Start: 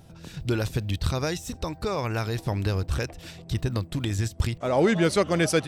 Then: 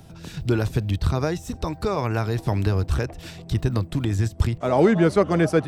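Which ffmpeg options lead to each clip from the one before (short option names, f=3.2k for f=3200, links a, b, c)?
-filter_complex "[0:a]acrossover=split=140|1600[a][b][c];[c]acompressor=threshold=-43dB:ratio=6[d];[a][b][d]amix=inputs=3:normalize=0,bandreject=f=530:w=12,volume=4.5dB"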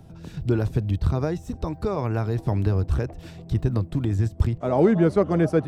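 -af "tiltshelf=f=1.2k:g=5,volume=-5dB"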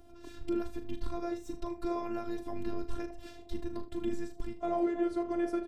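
-filter_complex "[0:a]alimiter=limit=-16.5dB:level=0:latency=1:release=239,asplit=2[a][b];[b]aecho=0:1:39|76:0.316|0.188[c];[a][c]amix=inputs=2:normalize=0,afftfilt=real='hypot(re,im)*cos(PI*b)':imag='0':win_size=512:overlap=0.75,volume=-2.5dB"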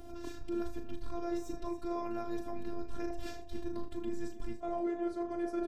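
-af "areverse,acompressor=threshold=-42dB:ratio=5,areverse,aecho=1:1:34.99|285.7:0.316|0.251,volume=7dB"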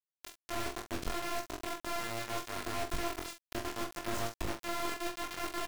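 -filter_complex "[0:a]acrusher=bits=4:mix=0:aa=0.000001,flanger=delay=19:depth=6.8:speed=0.7,asplit=2[a][b];[b]adelay=45,volume=-8dB[c];[a][c]amix=inputs=2:normalize=0"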